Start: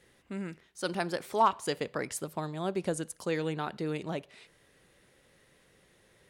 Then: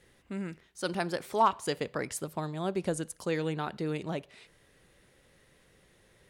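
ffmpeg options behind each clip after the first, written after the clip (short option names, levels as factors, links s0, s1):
-af "lowshelf=f=82:g=7.5"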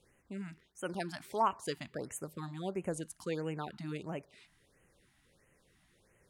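-af "afftfilt=real='re*(1-between(b*sr/1024,420*pow(4500/420,0.5+0.5*sin(2*PI*1.5*pts/sr))/1.41,420*pow(4500/420,0.5+0.5*sin(2*PI*1.5*pts/sr))*1.41))':imag='im*(1-between(b*sr/1024,420*pow(4500/420,0.5+0.5*sin(2*PI*1.5*pts/sr))/1.41,420*pow(4500/420,0.5+0.5*sin(2*PI*1.5*pts/sr))*1.41))':win_size=1024:overlap=0.75,volume=0.531"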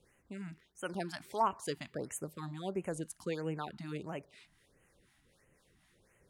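-filter_complex "[0:a]acrossover=split=670[s0][s1];[s0]aeval=exprs='val(0)*(1-0.5/2+0.5/2*cos(2*PI*4*n/s))':c=same[s2];[s1]aeval=exprs='val(0)*(1-0.5/2-0.5/2*cos(2*PI*4*n/s))':c=same[s3];[s2][s3]amix=inputs=2:normalize=0,volume=1.26"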